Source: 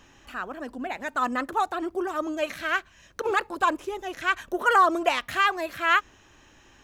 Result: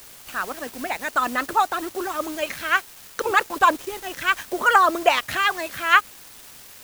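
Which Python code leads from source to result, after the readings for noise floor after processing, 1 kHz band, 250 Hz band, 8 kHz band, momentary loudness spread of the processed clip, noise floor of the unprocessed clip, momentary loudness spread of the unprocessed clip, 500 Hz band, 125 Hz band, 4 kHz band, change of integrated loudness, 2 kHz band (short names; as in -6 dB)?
-45 dBFS, +4.0 dB, -0.5 dB, +9.5 dB, 14 LU, -56 dBFS, 13 LU, +2.0 dB, n/a, +5.5 dB, +4.0 dB, +5.0 dB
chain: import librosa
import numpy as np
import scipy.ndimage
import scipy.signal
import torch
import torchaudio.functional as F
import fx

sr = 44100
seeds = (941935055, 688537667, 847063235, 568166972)

y = fx.hpss(x, sr, part='percussive', gain_db=8)
y = fx.dmg_noise_colour(y, sr, seeds[0], colour='white', level_db=-40.0)
y = np.where(np.abs(y) >= 10.0 ** (-35.0 / 20.0), y, 0.0)
y = y * librosa.db_to_amplitude(-1.0)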